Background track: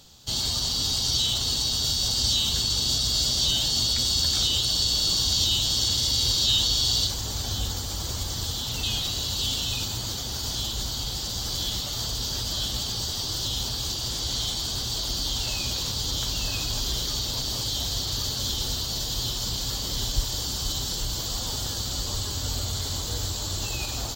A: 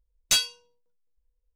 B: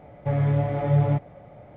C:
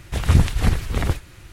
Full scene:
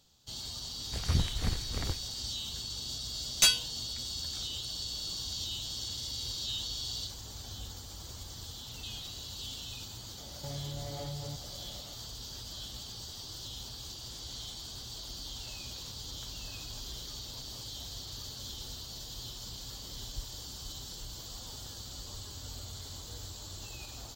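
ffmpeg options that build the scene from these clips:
-filter_complex "[0:a]volume=-14.5dB[a];[2:a]acompressor=threshold=-31dB:ratio=6:attack=3.2:release=140:knee=1:detection=peak[b];[3:a]atrim=end=1.52,asetpts=PTS-STARTPTS,volume=-14dB,afade=t=in:d=0.004:c=hsin,afade=t=out:st=1.516:d=0.004:c=hsin,adelay=800[c];[1:a]atrim=end=1.55,asetpts=PTS-STARTPTS,volume=-1dB,afade=t=in:d=0.004:c=hsin,afade=t=out:st=1.546:d=0.004:c=hsin,adelay=3110[d];[b]atrim=end=1.76,asetpts=PTS-STARTPTS,volume=-7dB,afade=t=in:d=0.004:c=hsin,afade=t=out:st=1.756:d=0.004:c=hsin,adelay=448938S[e];[a][c][d][e]amix=inputs=4:normalize=0"

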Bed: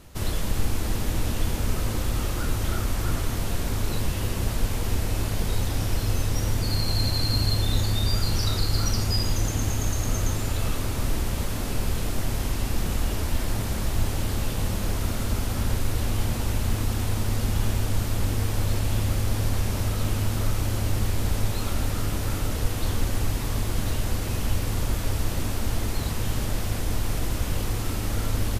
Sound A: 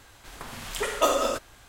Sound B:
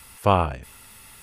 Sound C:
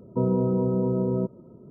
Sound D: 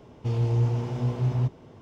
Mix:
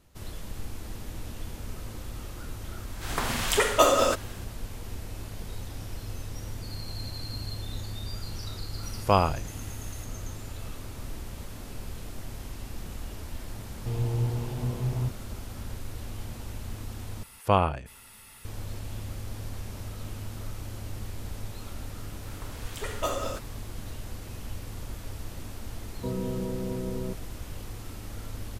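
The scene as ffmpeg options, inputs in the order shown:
-filter_complex "[1:a]asplit=2[a][b];[2:a]asplit=2[c][d];[0:a]volume=-12.5dB[e];[a]dynaudnorm=f=110:g=5:m=16dB[f];[e]asplit=2[g][h];[g]atrim=end=17.234[i];[d]atrim=end=1.22,asetpts=PTS-STARTPTS,volume=-3.5dB[j];[h]atrim=start=18.446[k];[f]atrim=end=1.68,asetpts=PTS-STARTPTS,volume=-4dB,afade=t=in:d=0.004:c=hsin,afade=t=out:st=1.676:d=0.004:c=hsin,adelay=2770[l];[c]atrim=end=1.22,asetpts=PTS-STARTPTS,volume=-3dB,afade=t=in:d=0.004:c=hsin,afade=t=out:st=1.216:d=0.004:c=hsin,adelay=8830[m];[4:a]atrim=end=1.81,asetpts=PTS-STARTPTS,volume=-4.5dB,afade=t=in:d=0.004:c=hsin,afade=t=out:st=1.806:d=0.004:c=hsin,adelay=13610[n];[b]atrim=end=1.68,asetpts=PTS-STARTPTS,volume=-8dB,afade=t=in:d=0.004:c=hsin,afade=t=out:st=1.676:d=0.004:c=hsin,adelay=22010[o];[3:a]atrim=end=1.7,asetpts=PTS-STARTPTS,volume=-9dB,afade=t=in:d=0.004:c=hsin,afade=t=out:st=1.696:d=0.004:c=hsin,adelay=25870[p];[i][j]acrossfade=d=0.004:c1=hsin:c2=hsin[q];[q][k]acrossfade=d=0.004:c1=hsin:c2=hsin[r];[r][l][m][n][o][p]amix=inputs=6:normalize=0"

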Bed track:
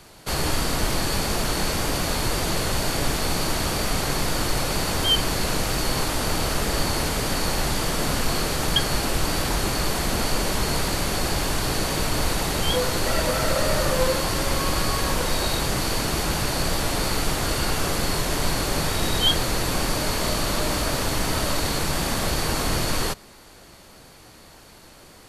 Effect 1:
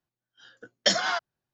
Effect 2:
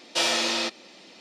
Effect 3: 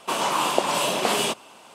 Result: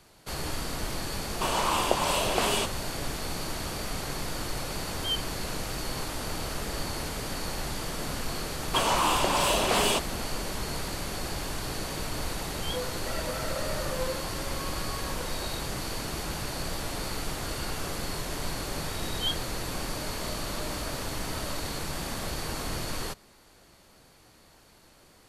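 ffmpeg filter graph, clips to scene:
-filter_complex "[3:a]asplit=2[a][b];[0:a]volume=-9.5dB[c];[b]asoftclip=type=tanh:threshold=-16dB[d];[a]atrim=end=1.74,asetpts=PTS-STARTPTS,volume=-4dB,afade=t=in:d=0.004:c=hsin,afade=t=out:st=1.736:d=0.004:c=hsin,adelay=1330[e];[d]atrim=end=1.74,asetpts=PTS-STARTPTS,volume=-0.5dB,afade=t=in:d=0.004:c=hsin,afade=t=out:st=1.736:d=0.004:c=hsin,adelay=381906S[f];[c][e][f]amix=inputs=3:normalize=0"

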